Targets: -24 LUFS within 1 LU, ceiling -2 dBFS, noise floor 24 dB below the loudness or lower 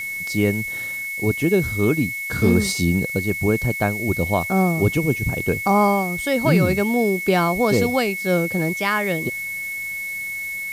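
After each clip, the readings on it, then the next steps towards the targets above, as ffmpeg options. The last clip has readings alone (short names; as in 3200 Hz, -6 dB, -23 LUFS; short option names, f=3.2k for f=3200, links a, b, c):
steady tone 2200 Hz; tone level -26 dBFS; noise floor -29 dBFS; noise floor target -45 dBFS; loudness -20.5 LUFS; peak -6.5 dBFS; loudness target -24.0 LUFS
-> -af "bandreject=f=2.2k:w=30"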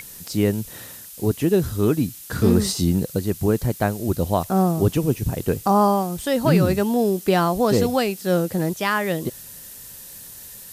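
steady tone none; noise floor -40 dBFS; noise floor target -45 dBFS
-> -af "afftdn=nr=6:nf=-40"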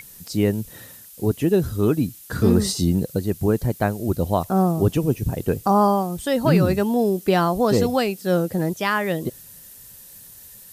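noise floor -44 dBFS; noise floor target -46 dBFS
-> -af "afftdn=nr=6:nf=-44"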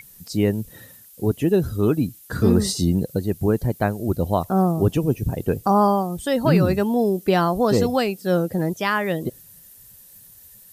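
noise floor -48 dBFS; loudness -21.5 LUFS; peak -7.0 dBFS; loudness target -24.0 LUFS
-> -af "volume=-2.5dB"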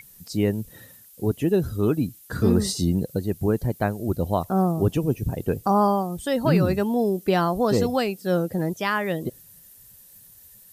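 loudness -24.0 LUFS; peak -9.5 dBFS; noise floor -50 dBFS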